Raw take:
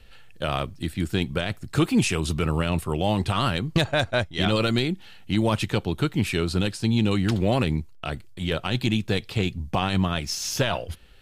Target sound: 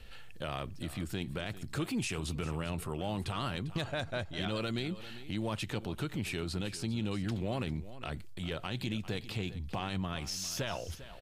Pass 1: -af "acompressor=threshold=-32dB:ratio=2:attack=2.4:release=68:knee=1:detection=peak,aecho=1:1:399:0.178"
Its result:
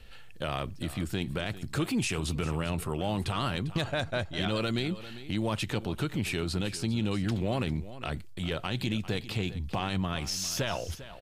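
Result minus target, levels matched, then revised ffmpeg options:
compressor: peak gain reduction -5 dB
-af "acompressor=threshold=-42dB:ratio=2:attack=2.4:release=68:knee=1:detection=peak,aecho=1:1:399:0.178"

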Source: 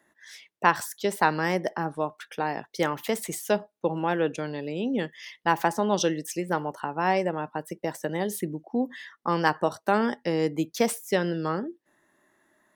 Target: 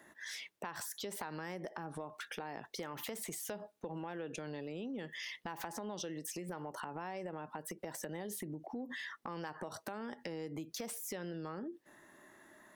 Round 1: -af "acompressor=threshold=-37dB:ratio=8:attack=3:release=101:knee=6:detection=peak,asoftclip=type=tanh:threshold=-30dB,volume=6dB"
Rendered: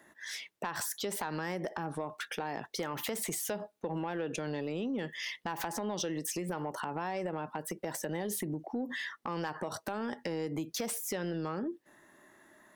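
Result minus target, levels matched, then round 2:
compressor: peak gain reduction -8 dB
-af "acompressor=threshold=-46dB:ratio=8:attack=3:release=101:knee=6:detection=peak,asoftclip=type=tanh:threshold=-30dB,volume=6dB"

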